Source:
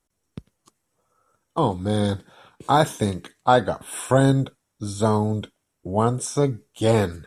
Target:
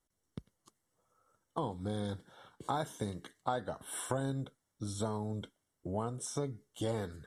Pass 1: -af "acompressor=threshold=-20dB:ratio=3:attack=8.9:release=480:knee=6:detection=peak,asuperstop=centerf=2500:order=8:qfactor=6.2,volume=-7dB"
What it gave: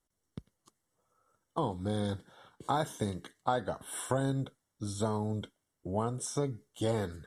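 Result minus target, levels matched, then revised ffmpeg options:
downward compressor: peak gain reduction −4.5 dB
-af "acompressor=threshold=-26.5dB:ratio=3:attack=8.9:release=480:knee=6:detection=peak,asuperstop=centerf=2500:order=8:qfactor=6.2,volume=-7dB"

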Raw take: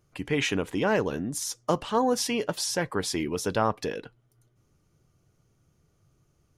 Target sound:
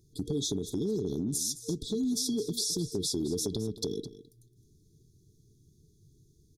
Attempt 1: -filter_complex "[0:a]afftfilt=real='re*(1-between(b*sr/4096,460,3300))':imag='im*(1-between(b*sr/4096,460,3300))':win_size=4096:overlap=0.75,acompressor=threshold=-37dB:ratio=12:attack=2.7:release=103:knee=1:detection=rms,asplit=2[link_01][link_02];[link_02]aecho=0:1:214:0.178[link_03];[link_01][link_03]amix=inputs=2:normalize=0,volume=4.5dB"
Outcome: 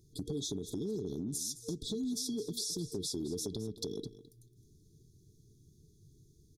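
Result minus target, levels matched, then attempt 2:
downward compressor: peak gain reduction +6 dB
-filter_complex "[0:a]afftfilt=real='re*(1-between(b*sr/4096,460,3300))':imag='im*(1-between(b*sr/4096,460,3300))':win_size=4096:overlap=0.75,acompressor=threshold=-30.5dB:ratio=12:attack=2.7:release=103:knee=1:detection=rms,asplit=2[link_01][link_02];[link_02]aecho=0:1:214:0.178[link_03];[link_01][link_03]amix=inputs=2:normalize=0,volume=4.5dB"

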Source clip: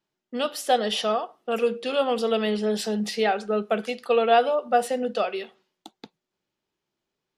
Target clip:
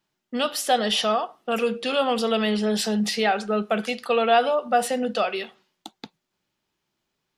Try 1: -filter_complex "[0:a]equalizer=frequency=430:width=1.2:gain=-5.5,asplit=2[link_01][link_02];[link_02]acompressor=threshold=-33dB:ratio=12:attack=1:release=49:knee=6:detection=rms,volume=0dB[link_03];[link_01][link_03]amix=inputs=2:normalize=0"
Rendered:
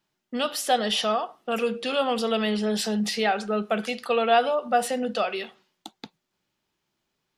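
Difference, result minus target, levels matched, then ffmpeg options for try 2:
downward compressor: peak gain reduction +8 dB
-filter_complex "[0:a]equalizer=frequency=430:width=1.2:gain=-5.5,asplit=2[link_01][link_02];[link_02]acompressor=threshold=-24.5dB:ratio=12:attack=1:release=49:knee=6:detection=rms,volume=0dB[link_03];[link_01][link_03]amix=inputs=2:normalize=0"

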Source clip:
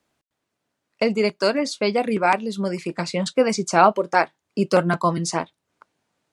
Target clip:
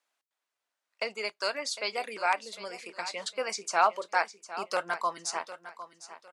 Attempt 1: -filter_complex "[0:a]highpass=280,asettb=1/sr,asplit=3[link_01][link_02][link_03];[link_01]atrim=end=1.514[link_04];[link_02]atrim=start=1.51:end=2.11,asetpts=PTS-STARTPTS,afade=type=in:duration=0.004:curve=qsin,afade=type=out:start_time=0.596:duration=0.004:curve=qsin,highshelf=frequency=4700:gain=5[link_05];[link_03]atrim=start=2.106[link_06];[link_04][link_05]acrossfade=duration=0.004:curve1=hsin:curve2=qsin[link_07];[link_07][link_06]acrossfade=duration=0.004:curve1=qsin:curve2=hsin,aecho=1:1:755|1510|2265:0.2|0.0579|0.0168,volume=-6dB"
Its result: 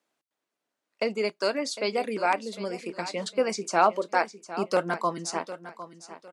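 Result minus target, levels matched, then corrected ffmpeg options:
250 Hz band +12.0 dB
-filter_complex "[0:a]highpass=820,asettb=1/sr,asplit=3[link_01][link_02][link_03];[link_01]atrim=end=1.514[link_04];[link_02]atrim=start=1.51:end=2.11,asetpts=PTS-STARTPTS,afade=type=in:duration=0.004:curve=qsin,afade=type=out:start_time=0.596:duration=0.004:curve=qsin,highshelf=frequency=4700:gain=5[link_05];[link_03]atrim=start=2.106[link_06];[link_04][link_05]acrossfade=duration=0.004:curve1=hsin:curve2=qsin[link_07];[link_07][link_06]acrossfade=duration=0.004:curve1=qsin:curve2=hsin,aecho=1:1:755|1510|2265:0.2|0.0579|0.0168,volume=-6dB"

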